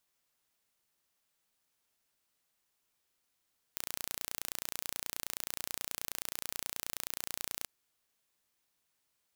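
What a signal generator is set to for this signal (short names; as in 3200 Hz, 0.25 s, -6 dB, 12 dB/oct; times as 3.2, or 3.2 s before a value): pulse train 29.4/s, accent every 0, -9.5 dBFS 3.88 s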